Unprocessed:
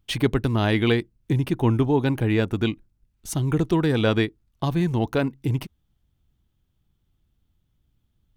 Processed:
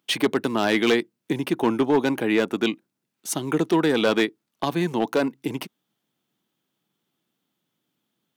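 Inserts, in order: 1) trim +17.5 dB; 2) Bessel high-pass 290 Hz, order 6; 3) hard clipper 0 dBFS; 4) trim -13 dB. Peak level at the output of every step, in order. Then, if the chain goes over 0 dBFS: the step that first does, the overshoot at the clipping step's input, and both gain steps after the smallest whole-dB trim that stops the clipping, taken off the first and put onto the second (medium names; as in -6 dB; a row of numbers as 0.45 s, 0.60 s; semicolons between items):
+11.0 dBFS, +9.5 dBFS, 0.0 dBFS, -13.0 dBFS; step 1, 9.5 dB; step 1 +7.5 dB, step 4 -3 dB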